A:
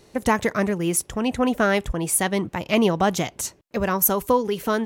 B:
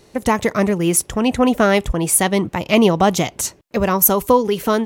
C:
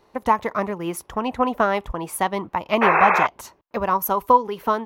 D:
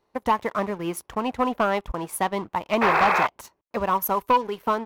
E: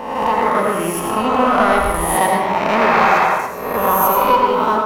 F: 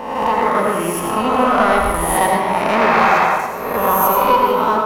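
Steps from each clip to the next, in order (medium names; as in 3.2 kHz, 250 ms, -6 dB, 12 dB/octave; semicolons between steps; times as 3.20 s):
dynamic bell 1.6 kHz, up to -6 dB, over -42 dBFS, Q 4.3; level rider gain up to 3.5 dB; trim +3 dB
painted sound noise, 2.81–3.27 s, 350–2700 Hz -13 dBFS; graphic EQ 125/1000/8000 Hz -5/+12/-11 dB; transient shaper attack +3 dB, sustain -1 dB; trim -10.5 dB
waveshaping leveller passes 2; trim -9 dB
reverse spectral sustain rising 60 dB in 1.21 s; reverberation, pre-delay 72 ms, DRR -0.5 dB; level rider; trim -1 dB
echo whose repeats swap between lows and highs 223 ms, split 1.1 kHz, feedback 51%, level -14 dB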